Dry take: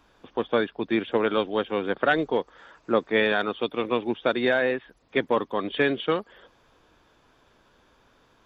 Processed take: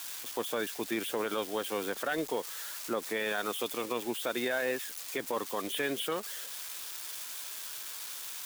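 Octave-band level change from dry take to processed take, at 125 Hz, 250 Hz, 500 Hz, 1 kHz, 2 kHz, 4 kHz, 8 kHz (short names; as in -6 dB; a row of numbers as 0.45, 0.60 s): -12.5 dB, -10.0 dB, -9.5 dB, -8.5 dB, -8.5 dB, -3.5 dB, n/a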